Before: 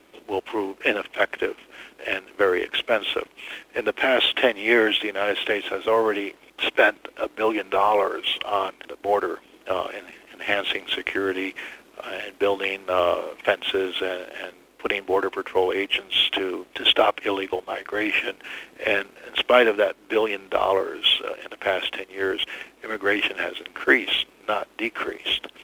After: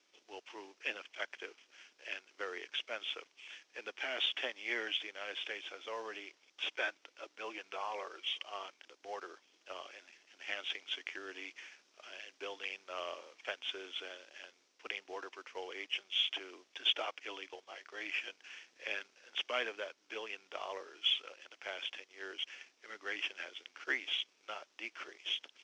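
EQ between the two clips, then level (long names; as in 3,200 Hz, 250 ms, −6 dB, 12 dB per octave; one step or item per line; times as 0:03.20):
resonant band-pass 5,700 Hz, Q 4.1
high-frequency loss of the air 60 metres
spectral tilt −2.5 dB per octave
+7.5 dB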